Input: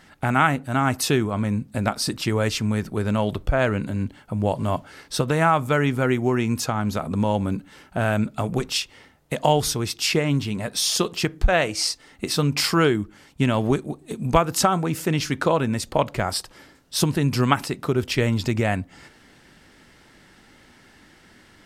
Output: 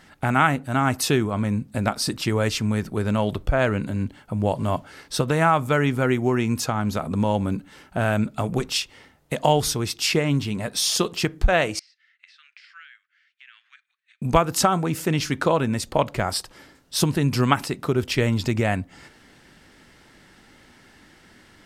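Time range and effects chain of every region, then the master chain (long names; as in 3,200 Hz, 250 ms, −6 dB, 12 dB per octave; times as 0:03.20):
0:11.79–0:14.22: Butterworth high-pass 1,600 Hz 48 dB per octave + downward compressor 5 to 1, threshold −33 dBFS + head-to-tape spacing loss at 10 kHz 42 dB
whole clip: no processing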